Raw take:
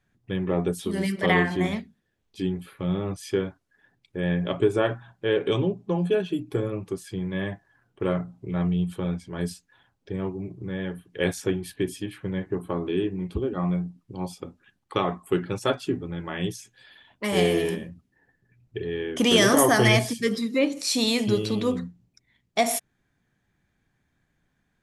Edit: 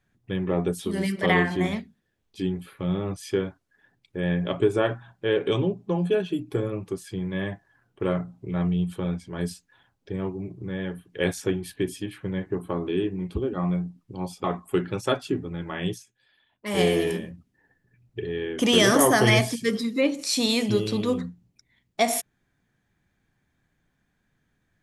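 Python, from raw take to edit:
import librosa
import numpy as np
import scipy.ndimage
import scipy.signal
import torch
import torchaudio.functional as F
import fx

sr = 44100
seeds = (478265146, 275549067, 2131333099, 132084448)

y = fx.edit(x, sr, fx.cut(start_s=14.44, length_s=0.58),
    fx.fade_down_up(start_s=16.5, length_s=0.83, db=-13.0, fade_s=0.14), tone=tone)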